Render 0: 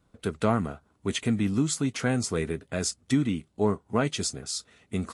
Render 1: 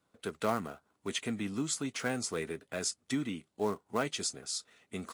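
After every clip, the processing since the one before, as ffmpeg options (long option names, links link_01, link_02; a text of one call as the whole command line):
ffmpeg -i in.wav -filter_complex "[0:a]highpass=frequency=400:poles=1,acrossover=split=750|1700[link_01][link_02][link_03];[link_02]acrusher=bits=2:mode=log:mix=0:aa=0.000001[link_04];[link_01][link_04][link_03]amix=inputs=3:normalize=0,volume=-4dB" out.wav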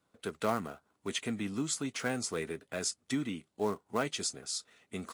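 ffmpeg -i in.wav -af anull out.wav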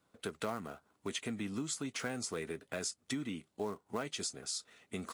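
ffmpeg -i in.wav -af "acompressor=threshold=-38dB:ratio=3,volume=1.5dB" out.wav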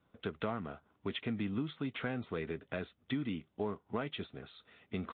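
ffmpeg -i in.wav -af "lowshelf=frequency=160:gain=9,aresample=8000,aresample=44100" out.wav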